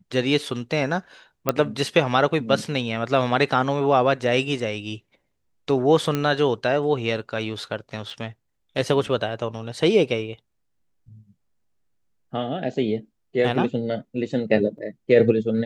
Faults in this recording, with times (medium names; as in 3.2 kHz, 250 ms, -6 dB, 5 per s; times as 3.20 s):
1.49 s: pop -5 dBFS
6.15 s: pop -10 dBFS
8.10 s: dropout 2.8 ms
14.78 s: dropout 4.7 ms